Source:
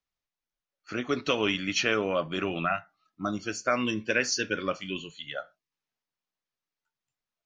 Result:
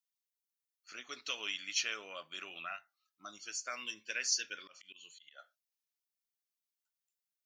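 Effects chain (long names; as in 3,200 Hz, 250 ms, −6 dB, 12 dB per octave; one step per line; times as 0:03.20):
first difference
0:04.58–0:05.39: volume swells 160 ms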